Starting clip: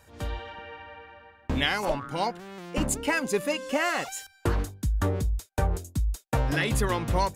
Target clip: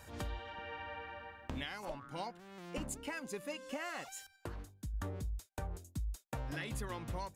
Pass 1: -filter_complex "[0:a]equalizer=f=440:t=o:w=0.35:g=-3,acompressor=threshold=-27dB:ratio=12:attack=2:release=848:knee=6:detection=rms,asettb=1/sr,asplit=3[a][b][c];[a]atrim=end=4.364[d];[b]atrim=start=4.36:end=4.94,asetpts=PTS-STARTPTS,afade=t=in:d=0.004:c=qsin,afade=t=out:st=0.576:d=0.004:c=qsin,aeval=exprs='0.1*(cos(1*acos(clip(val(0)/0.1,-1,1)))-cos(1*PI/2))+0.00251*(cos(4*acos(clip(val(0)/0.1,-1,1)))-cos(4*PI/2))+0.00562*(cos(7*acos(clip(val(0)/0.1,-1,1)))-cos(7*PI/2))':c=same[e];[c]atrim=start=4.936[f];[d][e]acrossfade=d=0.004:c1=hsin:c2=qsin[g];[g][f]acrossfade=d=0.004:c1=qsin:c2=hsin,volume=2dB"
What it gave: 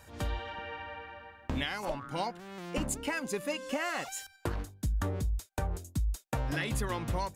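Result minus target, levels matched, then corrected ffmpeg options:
compressor: peak gain reduction -8 dB
-filter_complex "[0:a]equalizer=f=440:t=o:w=0.35:g=-3,acompressor=threshold=-36dB:ratio=12:attack=2:release=848:knee=6:detection=rms,asettb=1/sr,asplit=3[a][b][c];[a]atrim=end=4.364[d];[b]atrim=start=4.36:end=4.94,asetpts=PTS-STARTPTS,afade=t=in:d=0.004:c=qsin,afade=t=out:st=0.576:d=0.004:c=qsin,aeval=exprs='0.1*(cos(1*acos(clip(val(0)/0.1,-1,1)))-cos(1*PI/2))+0.00251*(cos(4*acos(clip(val(0)/0.1,-1,1)))-cos(4*PI/2))+0.00562*(cos(7*acos(clip(val(0)/0.1,-1,1)))-cos(7*PI/2))':c=same[e];[c]atrim=start=4.936[f];[d][e]acrossfade=d=0.004:c1=hsin:c2=qsin[g];[g][f]acrossfade=d=0.004:c1=qsin:c2=hsin,volume=2dB"

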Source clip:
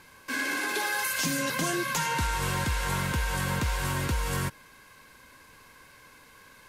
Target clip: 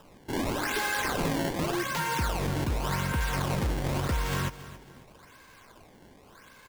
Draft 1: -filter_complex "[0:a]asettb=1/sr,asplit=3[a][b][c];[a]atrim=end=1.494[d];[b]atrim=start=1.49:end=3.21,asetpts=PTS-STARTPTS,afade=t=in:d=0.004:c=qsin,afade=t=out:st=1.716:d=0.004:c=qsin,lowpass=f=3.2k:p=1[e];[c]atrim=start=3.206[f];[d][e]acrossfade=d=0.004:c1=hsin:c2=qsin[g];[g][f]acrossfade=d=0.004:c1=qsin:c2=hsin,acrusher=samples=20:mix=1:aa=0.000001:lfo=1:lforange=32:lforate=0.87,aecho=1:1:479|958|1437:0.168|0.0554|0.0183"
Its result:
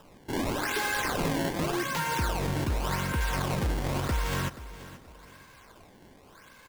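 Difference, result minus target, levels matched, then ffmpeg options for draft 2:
echo 0.205 s late
-filter_complex "[0:a]asettb=1/sr,asplit=3[a][b][c];[a]atrim=end=1.494[d];[b]atrim=start=1.49:end=3.21,asetpts=PTS-STARTPTS,afade=t=in:d=0.004:c=qsin,afade=t=out:st=1.716:d=0.004:c=qsin,lowpass=f=3.2k:p=1[e];[c]atrim=start=3.206[f];[d][e]acrossfade=d=0.004:c1=hsin:c2=qsin[g];[g][f]acrossfade=d=0.004:c1=qsin:c2=hsin,acrusher=samples=20:mix=1:aa=0.000001:lfo=1:lforange=32:lforate=0.87,aecho=1:1:274|548|822:0.168|0.0554|0.0183"

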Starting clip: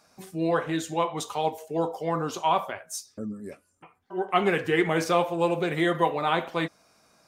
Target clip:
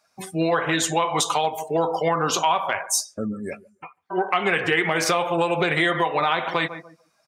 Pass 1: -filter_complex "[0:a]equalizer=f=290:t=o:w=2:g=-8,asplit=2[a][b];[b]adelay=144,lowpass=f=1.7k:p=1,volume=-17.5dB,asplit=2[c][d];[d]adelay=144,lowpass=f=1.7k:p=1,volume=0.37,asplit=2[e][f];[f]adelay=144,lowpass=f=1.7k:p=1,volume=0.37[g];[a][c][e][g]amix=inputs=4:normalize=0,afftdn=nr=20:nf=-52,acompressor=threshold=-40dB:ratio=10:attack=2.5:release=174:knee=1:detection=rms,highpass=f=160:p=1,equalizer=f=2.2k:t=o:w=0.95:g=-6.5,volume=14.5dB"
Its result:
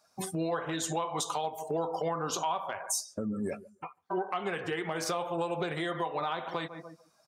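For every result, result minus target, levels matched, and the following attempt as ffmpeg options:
compressor: peak gain reduction +10 dB; 2000 Hz band -5.0 dB
-filter_complex "[0:a]equalizer=f=290:t=o:w=2:g=-8,asplit=2[a][b];[b]adelay=144,lowpass=f=1.7k:p=1,volume=-17.5dB,asplit=2[c][d];[d]adelay=144,lowpass=f=1.7k:p=1,volume=0.37,asplit=2[e][f];[f]adelay=144,lowpass=f=1.7k:p=1,volume=0.37[g];[a][c][e][g]amix=inputs=4:normalize=0,afftdn=nr=20:nf=-52,acompressor=threshold=-29dB:ratio=10:attack=2.5:release=174:knee=1:detection=rms,highpass=f=160:p=1,equalizer=f=2.2k:t=o:w=0.95:g=-6.5,volume=14.5dB"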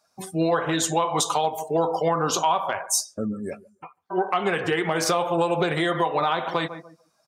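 2000 Hz band -4.5 dB
-filter_complex "[0:a]equalizer=f=290:t=o:w=2:g=-8,asplit=2[a][b];[b]adelay=144,lowpass=f=1.7k:p=1,volume=-17.5dB,asplit=2[c][d];[d]adelay=144,lowpass=f=1.7k:p=1,volume=0.37,asplit=2[e][f];[f]adelay=144,lowpass=f=1.7k:p=1,volume=0.37[g];[a][c][e][g]amix=inputs=4:normalize=0,afftdn=nr=20:nf=-52,acompressor=threshold=-29dB:ratio=10:attack=2.5:release=174:knee=1:detection=rms,highpass=f=160:p=1,equalizer=f=2.2k:t=o:w=0.95:g=2,volume=14.5dB"

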